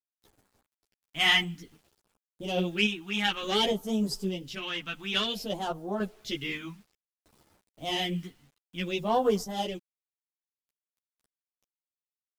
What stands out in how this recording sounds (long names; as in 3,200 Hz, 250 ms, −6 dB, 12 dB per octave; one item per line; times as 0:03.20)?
phaser sweep stages 2, 0.56 Hz, lowest notch 480–2,400 Hz
a quantiser's noise floor 10 bits, dither none
sample-and-hold tremolo
a shimmering, thickened sound